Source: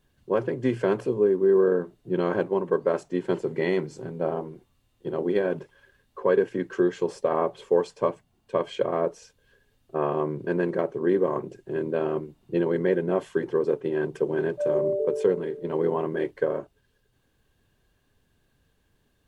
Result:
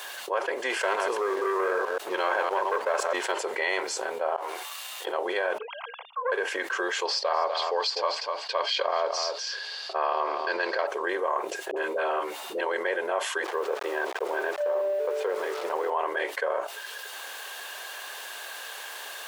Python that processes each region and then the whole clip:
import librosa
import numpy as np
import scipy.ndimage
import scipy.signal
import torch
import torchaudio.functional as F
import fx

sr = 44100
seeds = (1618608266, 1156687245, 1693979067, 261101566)

y = fx.chain(x, sr, fx.reverse_delay(ms=128, wet_db=-7.0),
    fx.leveller(passes=1), at=(0.7, 3.32))
y = fx.chain(y, sr, fx.halfwave_gain(db=-3.0),
    fx.highpass(hz=1000.0, slope=6),
    fx.over_compress(threshold_db=-50.0, ratio=-1.0), at=(4.36, 5.07))
y = fx.chain(y, sr, fx.sine_speech(),
    fx.fixed_phaser(hz=710.0, stages=4),
    fx.doppler_dist(depth_ms=0.35), at=(5.58, 6.32))
y = fx.chain(y, sr, fx.lowpass_res(hz=4700.0, q=9.6),
    fx.echo_single(ms=249, db=-13.5), at=(7.05, 10.87))
y = fx.chain(y, sr, fx.doubler(ms=13.0, db=-6),
    fx.dispersion(late='highs', ms=54.0, hz=680.0), at=(11.71, 12.61))
y = fx.chain(y, sr, fx.delta_hold(step_db=-42.0),
    fx.lowpass(hz=1600.0, slope=6), at=(13.44, 15.9))
y = scipy.signal.sosfilt(scipy.signal.butter(4, 670.0, 'highpass', fs=sr, output='sos'), y)
y = fx.env_flatten(y, sr, amount_pct=70)